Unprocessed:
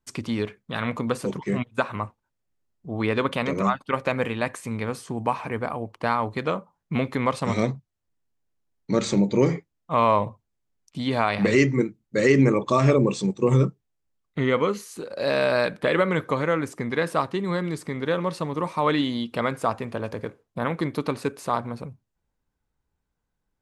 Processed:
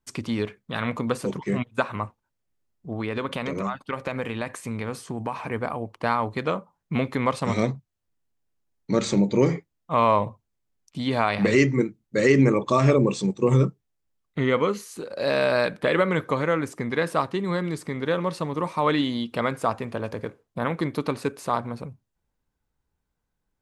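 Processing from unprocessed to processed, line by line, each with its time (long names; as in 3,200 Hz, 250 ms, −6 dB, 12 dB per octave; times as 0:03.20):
0:02.92–0:05.36: downward compressor 3 to 1, threshold −25 dBFS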